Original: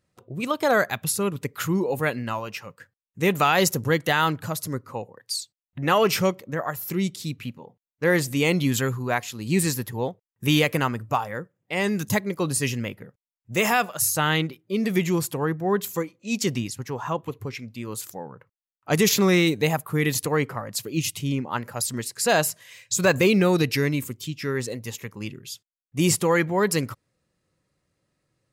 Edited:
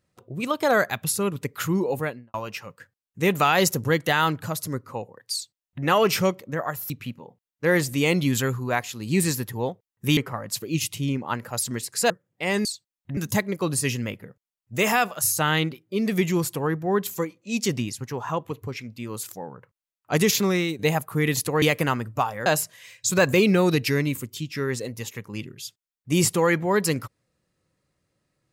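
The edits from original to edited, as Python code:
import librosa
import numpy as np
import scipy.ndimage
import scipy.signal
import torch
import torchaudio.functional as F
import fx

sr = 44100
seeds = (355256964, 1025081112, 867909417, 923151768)

y = fx.studio_fade_out(x, sr, start_s=1.9, length_s=0.44)
y = fx.edit(y, sr, fx.duplicate(start_s=5.33, length_s=0.52, to_s=11.95),
    fx.cut(start_s=6.9, length_s=0.39),
    fx.swap(start_s=10.56, length_s=0.84, other_s=20.4, other_length_s=1.93),
    fx.fade_out_to(start_s=18.97, length_s=0.6, floor_db=-9.0), tone=tone)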